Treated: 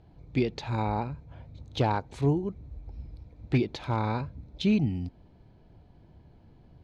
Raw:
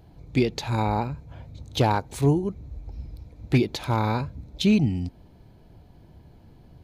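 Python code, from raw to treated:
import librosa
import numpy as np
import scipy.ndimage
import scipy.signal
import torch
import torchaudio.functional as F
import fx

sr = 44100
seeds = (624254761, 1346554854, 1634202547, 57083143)

y = scipy.signal.sosfilt(scipy.signal.bessel(2, 4000.0, 'lowpass', norm='mag', fs=sr, output='sos'), x)
y = y * librosa.db_to_amplitude(-4.5)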